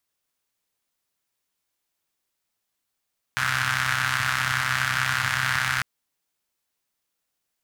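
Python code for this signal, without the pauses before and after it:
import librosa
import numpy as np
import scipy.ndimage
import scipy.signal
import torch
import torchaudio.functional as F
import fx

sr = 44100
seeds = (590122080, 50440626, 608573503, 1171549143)

y = fx.engine_four(sr, seeds[0], length_s=2.45, rpm=3900, resonances_hz=(110.0, 1500.0))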